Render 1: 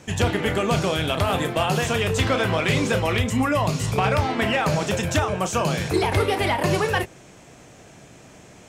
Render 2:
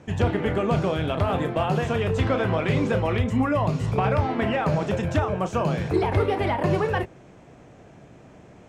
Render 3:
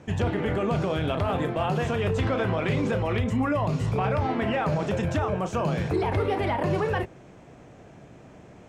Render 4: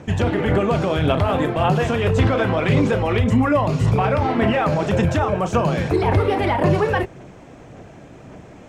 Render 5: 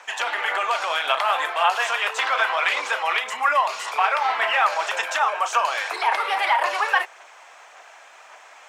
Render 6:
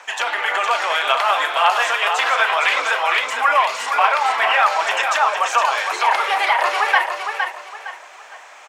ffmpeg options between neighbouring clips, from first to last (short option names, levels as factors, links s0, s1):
-af "lowpass=f=1100:p=1"
-af "alimiter=limit=0.133:level=0:latency=1:release=32"
-af "aphaser=in_gain=1:out_gain=1:delay=3.8:decay=0.3:speed=1.8:type=sinusoidal,volume=2.11"
-af "highpass=f=880:w=0.5412,highpass=f=880:w=1.3066,volume=1.88"
-af "aecho=1:1:462|924|1386|1848:0.501|0.155|0.0482|0.0149,volume=1.5"